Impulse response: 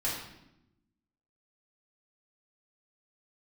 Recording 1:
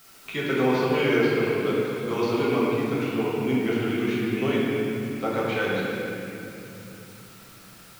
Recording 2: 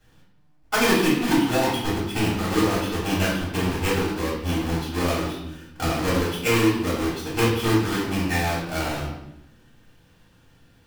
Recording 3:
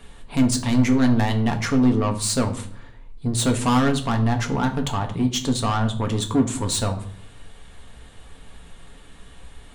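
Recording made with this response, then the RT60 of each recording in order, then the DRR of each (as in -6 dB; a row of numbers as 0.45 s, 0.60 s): 2; 2.9 s, 0.85 s, 0.60 s; -7.0 dB, -8.5 dB, 4.0 dB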